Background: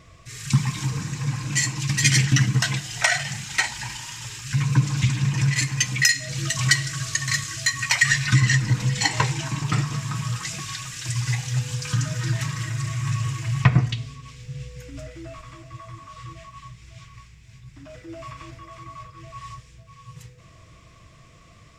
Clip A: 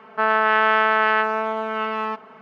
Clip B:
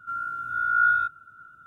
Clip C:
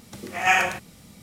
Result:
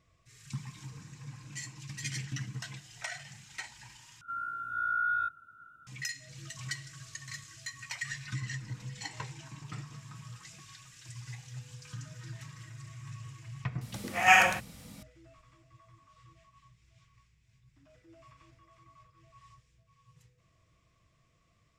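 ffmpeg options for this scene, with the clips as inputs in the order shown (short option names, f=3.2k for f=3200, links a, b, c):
-filter_complex "[0:a]volume=-19.5dB[a];[2:a]alimiter=limit=-18.5dB:level=0:latency=1:release=23[b];[3:a]equalizer=f=380:w=4:g=-9[c];[a]asplit=2[d][e];[d]atrim=end=4.214[f];[b]atrim=end=1.66,asetpts=PTS-STARTPTS,volume=-6dB[g];[e]atrim=start=5.866[h];[c]atrim=end=1.22,asetpts=PTS-STARTPTS,volume=-1dB,afade=t=in:d=0.004:c=hsin,afade=t=out:st=1.216:d=0.004:c=hsin,adelay=13810[i];[f][g]acrossfade=d=0.004:c1=hsin:c2=hsin[j];[j][h]acrossfade=d=0.004:c1=hsin:c2=hsin[k];[k][i]amix=inputs=2:normalize=0"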